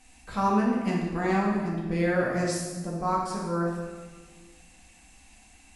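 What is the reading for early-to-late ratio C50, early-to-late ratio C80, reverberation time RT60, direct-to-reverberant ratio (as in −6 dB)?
1.0 dB, 3.5 dB, 1.5 s, −4.5 dB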